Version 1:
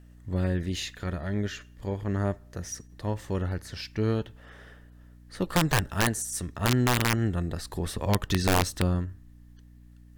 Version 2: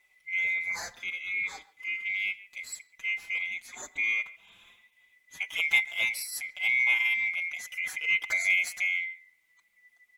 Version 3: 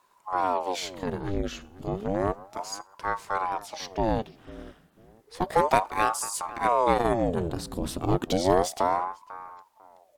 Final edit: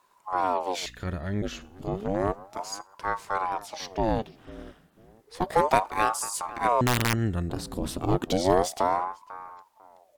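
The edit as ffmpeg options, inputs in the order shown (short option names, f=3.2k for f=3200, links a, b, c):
-filter_complex "[0:a]asplit=2[a][b];[2:a]asplit=3[c][d][e];[c]atrim=end=0.862[f];[a]atrim=start=0.858:end=1.422[g];[d]atrim=start=1.418:end=6.812[h];[b]atrim=start=6.808:end=7.502[i];[e]atrim=start=7.498[j];[f][g]acrossfade=d=0.004:c1=hsin:c2=hsin[k];[k][h]acrossfade=d=0.004:c1=hsin:c2=hsin[l];[l][i]acrossfade=d=0.004:c1=hsin:c2=hsin[m];[m][j]acrossfade=d=0.004:c1=hsin:c2=hsin"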